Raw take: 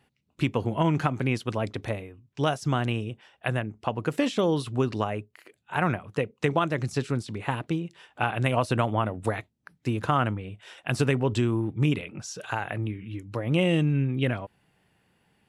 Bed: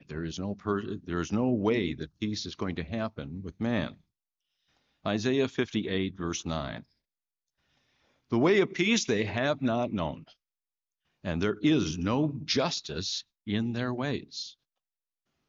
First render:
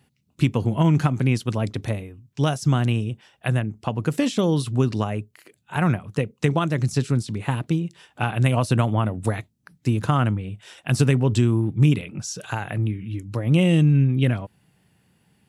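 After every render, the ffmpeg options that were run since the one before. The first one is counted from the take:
-af "highpass=f=180:p=1,bass=f=250:g=14,treble=f=4000:g=8"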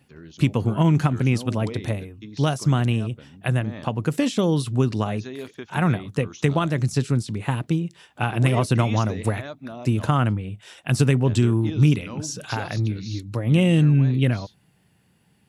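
-filter_complex "[1:a]volume=0.376[s0];[0:a][s0]amix=inputs=2:normalize=0"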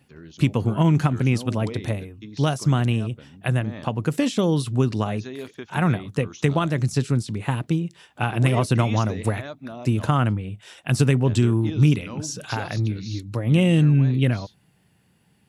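-af anull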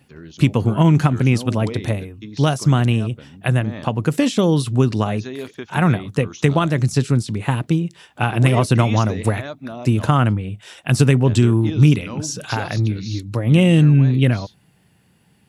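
-af "volume=1.68"

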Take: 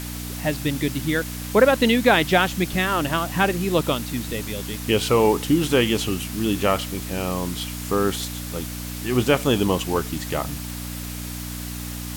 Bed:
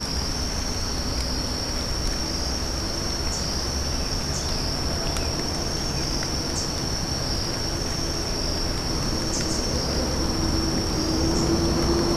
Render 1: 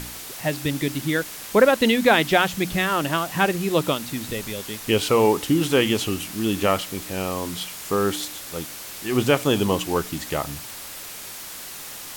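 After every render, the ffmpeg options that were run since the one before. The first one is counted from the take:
-af "bandreject=f=60:t=h:w=4,bandreject=f=120:t=h:w=4,bandreject=f=180:t=h:w=4,bandreject=f=240:t=h:w=4,bandreject=f=300:t=h:w=4"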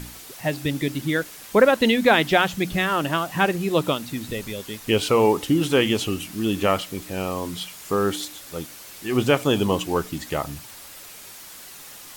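-af "afftdn=nr=6:nf=-37"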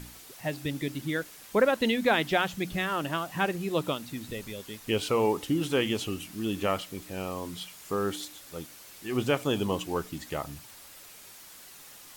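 -af "volume=0.422"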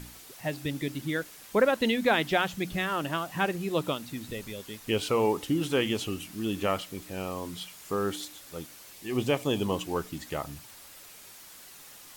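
-filter_complex "[0:a]asettb=1/sr,asplit=3[s0][s1][s2];[s0]atrim=end=8.934[s3];[s1]atrim=start=8.93:end=9.62,asetpts=PTS-STARTPTS,afade=t=in:d=0.004:c=qsin,afade=t=out:st=0.686:d=0.004:c=qsin,equalizer=f=1400:t=o:w=0.24:g=-11.5[s4];[s2]atrim=start=9.616[s5];[s3][s4]acrossfade=d=0.004:c1=hsin:c2=qsin[s6];[s6][s5]acrossfade=d=0.004:c1=qsin:c2=hsin"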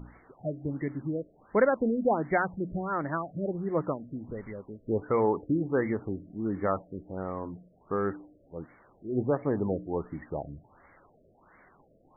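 -af "afftfilt=real='re*lt(b*sr/1024,650*pow(2300/650,0.5+0.5*sin(2*PI*1.4*pts/sr)))':imag='im*lt(b*sr/1024,650*pow(2300/650,0.5+0.5*sin(2*PI*1.4*pts/sr)))':win_size=1024:overlap=0.75"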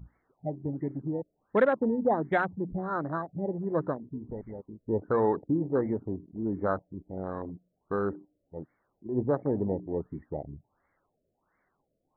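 -af "afwtdn=0.0251"

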